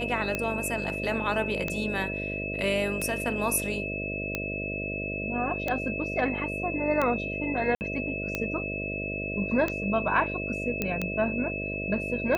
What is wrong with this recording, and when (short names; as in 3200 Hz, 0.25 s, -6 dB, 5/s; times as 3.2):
buzz 50 Hz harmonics 13 -35 dBFS
tick 45 rpm -14 dBFS
tone 2600 Hz -33 dBFS
7.75–7.81 gap 59 ms
10.82 pop -13 dBFS